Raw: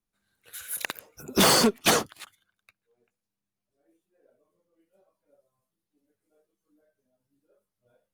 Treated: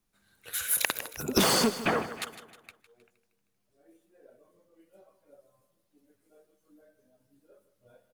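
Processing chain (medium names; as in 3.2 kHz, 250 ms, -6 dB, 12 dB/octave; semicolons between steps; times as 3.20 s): compression 16:1, threshold -29 dBFS, peak gain reduction 13.5 dB; 1.81–2.22 s: low-pass 2.3 kHz 24 dB/octave; feedback delay 156 ms, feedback 49%, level -14 dB; trim +8 dB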